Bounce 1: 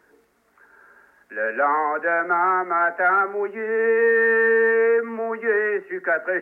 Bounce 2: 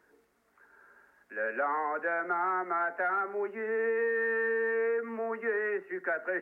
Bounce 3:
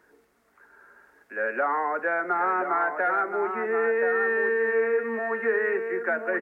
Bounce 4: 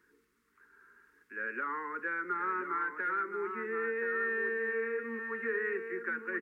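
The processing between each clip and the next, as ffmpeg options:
-af "acompressor=threshold=0.112:ratio=6,volume=0.422"
-af "aecho=1:1:1026:0.447,volume=1.78"
-af "asuperstop=centerf=680:order=4:qfactor=1,volume=0.473"

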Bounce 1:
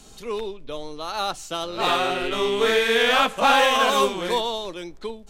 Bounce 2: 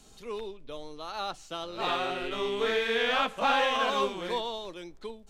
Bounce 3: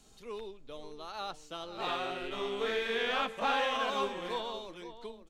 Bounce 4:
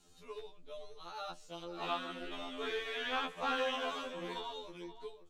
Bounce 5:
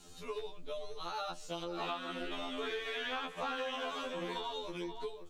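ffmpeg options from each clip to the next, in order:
-filter_complex "[0:a]acrossover=split=5500[s0][s1];[s1]acompressor=threshold=0.00355:ratio=4:attack=1:release=60[s2];[s0][s2]amix=inputs=2:normalize=0,volume=0.398"
-filter_complex "[0:a]asplit=2[s0][s1];[s1]adelay=524.8,volume=0.251,highshelf=f=4000:g=-11.8[s2];[s0][s2]amix=inputs=2:normalize=0,volume=0.562"
-af "afftfilt=real='re*2*eq(mod(b,4),0)':imag='im*2*eq(mod(b,4),0)':win_size=2048:overlap=0.75,volume=0.794"
-af "acompressor=threshold=0.00501:ratio=5,volume=2.99"

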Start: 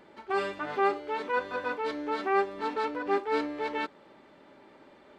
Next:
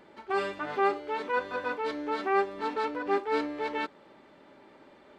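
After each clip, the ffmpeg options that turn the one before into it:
-af anull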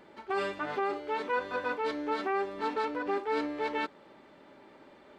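-af "alimiter=limit=0.0944:level=0:latency=1:release=53"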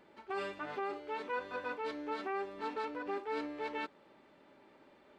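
-af "equalizer=f=2600:w=6.4:g=3,volume=0.447"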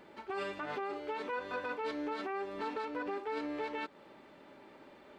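-af "alimiter=level_in=3.35:limit=0.0631:level=0:latency=1:release=155,volume=0.299,volume=2"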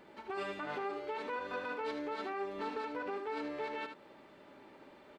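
-af "aecho=1:1:76:0.422,volume=0.841"

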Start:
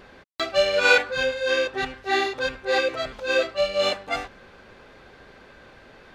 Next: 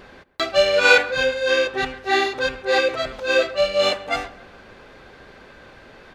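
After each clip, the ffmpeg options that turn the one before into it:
-filter_complex "[0:a]asplit=2[s0][s1];[s1]adelay=136,lowpass=f=2100:p=1,volume=0.126,asplit=2[s2][s3];[s3]adelay=136,lowpass=f=2100:p=1,volume=0.49,asplit=2[s4][s5];[s5]adelay=136,lowpass=f=2100:p=1,volume=0.49,asplit=2[s6][s7];[s7]adelay=136,lowpass=f=2100:p=1,volume=0.49[s8];[s0][s2][s4][s6][s8]amix=inputs=5:normalize=0,volume=1.5"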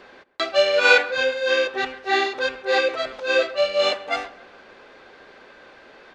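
-filter_complex "[0:a]acrossover=split=250 7500:gain=0.178 1 0.2[s0][s1][s2];[s0][s1][s2]amix=inputs=3:normalize=0,volume=0.891"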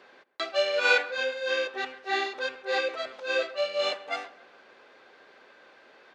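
-af "highpass=f=300:p=1,volume=0.447"

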